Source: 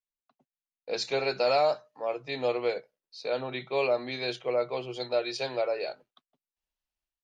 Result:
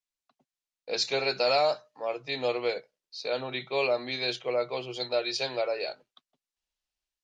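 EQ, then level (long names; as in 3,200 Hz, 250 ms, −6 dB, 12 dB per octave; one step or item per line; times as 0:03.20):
low-pass filter 6,300 Hz 12 dB per octave
high-shelf EQ 3,400 Hz +11 dB
−1.0 dB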